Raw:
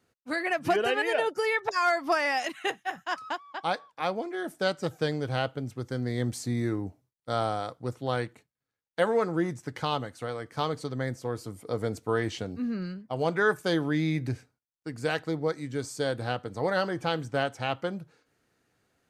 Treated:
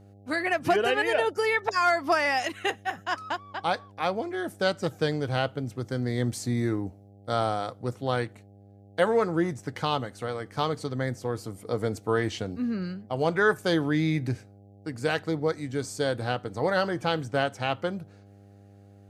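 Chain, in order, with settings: mains buzz 100 Hz, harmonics 8, -54 dBFS -6 dB/octave; trim +2 dB

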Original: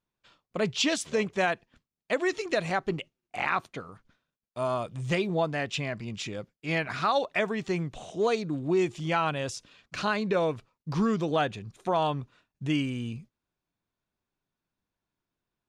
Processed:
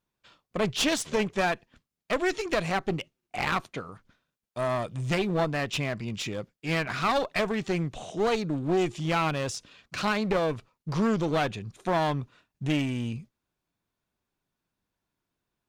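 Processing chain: one-sided clip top -32.5 dBFS; trim +3 dB

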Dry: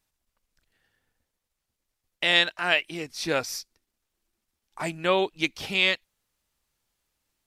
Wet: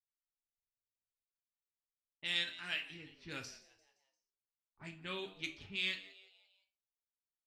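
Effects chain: level-controlled noise filter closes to 370 Hz, open at -22 dBFS; gate with hold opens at -59 dBFS; amplifier tone stack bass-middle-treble 6-0-2; frequency-shifting echo 173 ms, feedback 47%, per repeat +100 Hz, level -19 dB; on a send at -3.5 dB: reverberation RT60 0.40 s, pre-delay 3 ms; on the sum: trim +2 dB

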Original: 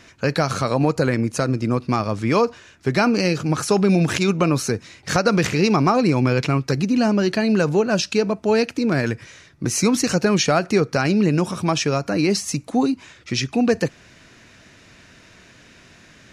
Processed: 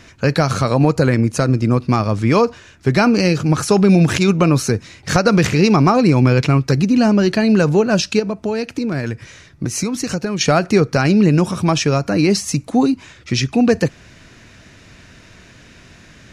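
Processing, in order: bass shelf 130 Hz +8.5 dB; 8.19–10.41 s: compression, threshold -21 dBFS, peak gain reduction 9.5 dB; trim +3 dB

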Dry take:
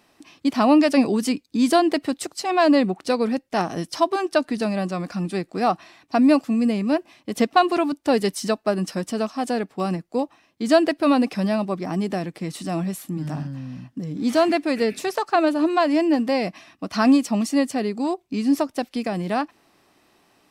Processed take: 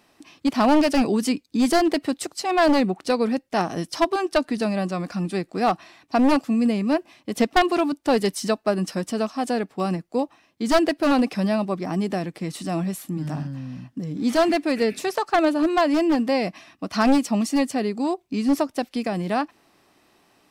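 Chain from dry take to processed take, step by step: one-sided wavefolder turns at -15 dBFS

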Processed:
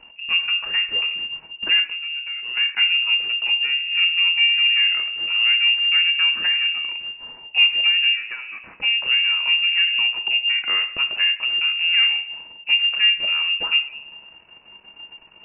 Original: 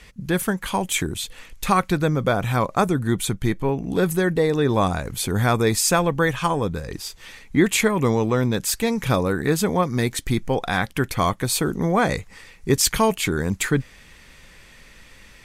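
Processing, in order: partial rectifier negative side -12 dB; low-pass that closes with the level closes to 870 Hz, closed at -19 dBFS; 1.80–2.57 s: compression 6:1, threshold -33 dBFS, peak gain reduction 14 dB; 8.13–8.81 s: high-pass 440 Hz 6 dB/octave; reverberation RT60 0.65 s, pre-delay 6 ms, DRR 7 dB; frequency inversion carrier 2.8 kHz; 9.87–10.82 s: three bands compressed up and down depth 40%; trim -2.5 dB

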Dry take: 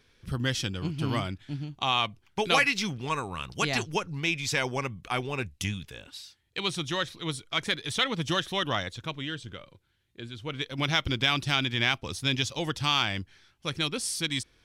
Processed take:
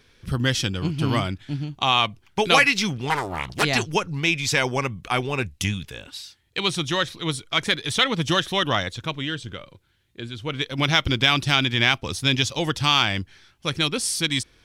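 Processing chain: 3.10–3.63 s: loudspeaker Doppler distortion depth 0.87 ms; trim +6.5 dB

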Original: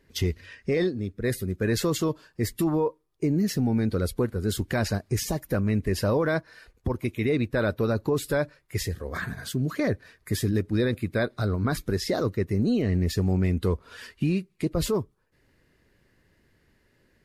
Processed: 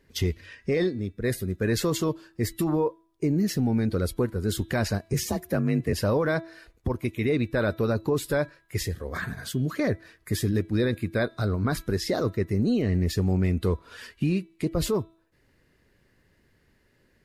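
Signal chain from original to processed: de-hum 328.5 Hz, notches 12; 5.13–5.93 s: frequency shift +37 Hz

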